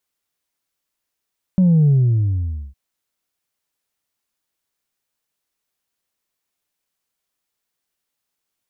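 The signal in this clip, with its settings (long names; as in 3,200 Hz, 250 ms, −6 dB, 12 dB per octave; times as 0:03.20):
bass drop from 190 Hz, over 1.16 s, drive 1 dB, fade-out 0.86 s, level −10.5 dB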